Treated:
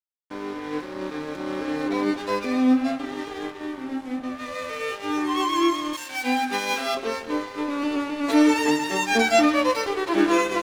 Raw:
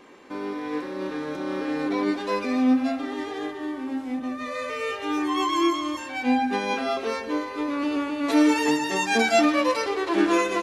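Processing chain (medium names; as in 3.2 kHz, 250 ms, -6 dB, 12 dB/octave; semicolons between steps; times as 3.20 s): crossover distortion -39 dBFS; 5.93–6.95 s: tilt EQ +2.5 dB/octave; trim +2 dB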